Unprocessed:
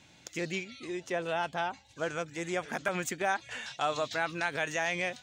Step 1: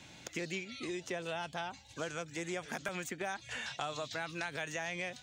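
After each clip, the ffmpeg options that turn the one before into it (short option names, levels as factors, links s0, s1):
-filter_complex "[0:a]acrossover=split=180|2900[s0][s1][s2];[s0]acompressor=threshold=0.00141:ratio=4[s3];[s1]acompressor=threshold=0.00631:ratio=4[s4];[s2]acompressor=threshold=0.00282:ratio=4[s5];[s3][s4][s5]amix=inputs=3:normalize=0,volume=1.68"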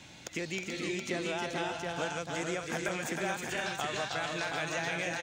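-af "aecho=1:1:315|364|433|724:0.596|0.299|0.473|0.596,volume=1.33"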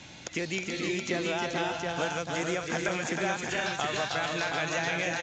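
-af "volume=1.58" -ar 16000 -c:a pcm_mulaw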